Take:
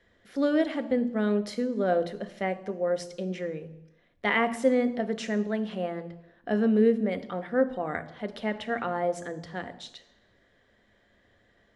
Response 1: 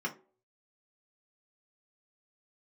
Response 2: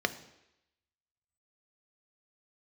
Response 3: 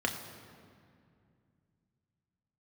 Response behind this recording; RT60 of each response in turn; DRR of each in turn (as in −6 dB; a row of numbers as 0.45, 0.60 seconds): 2; non-exponential decay, 0.85 s, 2.3 s; −1.0, 9.5, 2.0 decibels